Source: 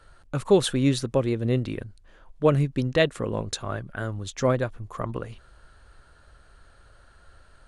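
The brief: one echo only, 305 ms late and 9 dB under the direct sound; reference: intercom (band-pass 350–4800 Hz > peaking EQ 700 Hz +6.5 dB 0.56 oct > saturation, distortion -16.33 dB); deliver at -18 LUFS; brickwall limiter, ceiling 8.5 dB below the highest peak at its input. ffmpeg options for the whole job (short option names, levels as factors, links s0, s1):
-af "alimiter=limit=0.15:level=0:latency=1,highpass=350,lowpass=4800,equalizer=f=700:t=o:w=0.56:g=6.5,aecho=1:1:305:0.355,asoftclip=threshold=0.112,volume=5.31"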